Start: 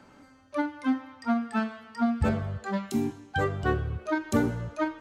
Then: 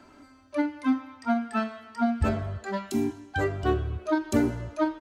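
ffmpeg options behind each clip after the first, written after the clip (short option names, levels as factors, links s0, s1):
-af "aecho=1:1:3:0.57"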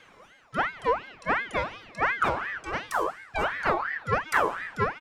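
-af "aeval=exprs='val(0)*sin(2*PI*1300*n/s+1300*0.45/2.8*sin(2*PI*2.8*n/s))':c=same,volume=1.26"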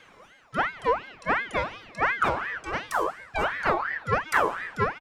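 -filter_complex "[0:a]asplit=2[s0][s1];[s1]adelay=1633,volume=0.0447,highshelf=f=4000:g=-36.7[s2];[s0][s2]amix=inputs=2:normalize=0,volume=1.12"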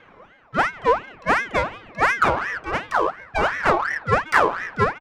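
-af "adynamicsmooth=sensitivity=3.5:basefreq=2200,volume=2"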